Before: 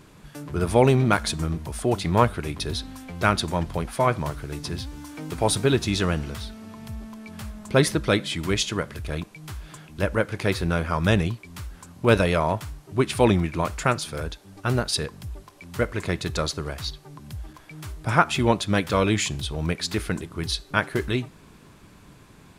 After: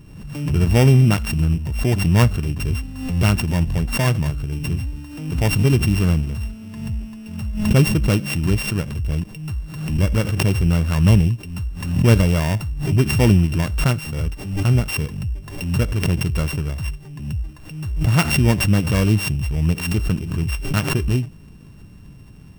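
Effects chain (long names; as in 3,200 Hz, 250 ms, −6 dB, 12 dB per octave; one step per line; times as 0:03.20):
samples sorted by size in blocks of 16 samples
bass and treble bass +14 dB, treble 0 dB
background raised ahead of every attack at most 60 dB per second
level −3.5 dB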